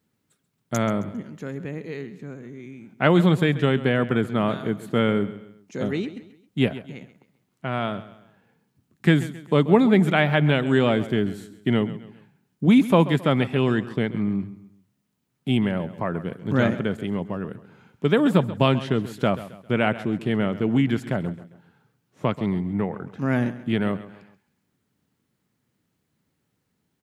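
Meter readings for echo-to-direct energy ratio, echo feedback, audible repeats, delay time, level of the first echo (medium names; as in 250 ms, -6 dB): -15.0 dB, 39%, 3, 134 ms, -15.5 dB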